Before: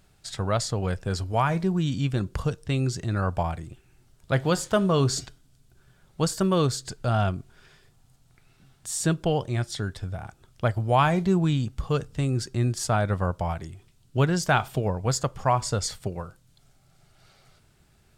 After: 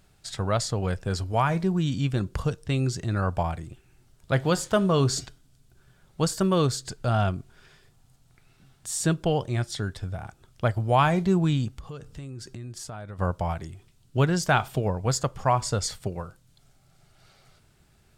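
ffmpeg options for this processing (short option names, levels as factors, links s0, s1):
-filter_complex "[0:a]asettb=1/sr,asplit=3[s0][s1][s2];[s0]atrim=end=11.704[s3];[s1]atrim=start=11.7:end=13.19,asetpts=PTS-STARTPTS,afade=t=in:d=0.004:c=qsin,afade=t=out:st=1.486:d=0.004:c=qsin,acompressor=threshold=0.0158:ratio=5:attack=3.2:release=140:knee=1:detection=peak[s4];[s2]atrim=start=13.186[s5];[s3][s4]acrossfade=d=0.004:c1=hsin:c2=qsin[s6];[s6][s5]acrossfade=d=0.004:c1=qsin:c2=hsin"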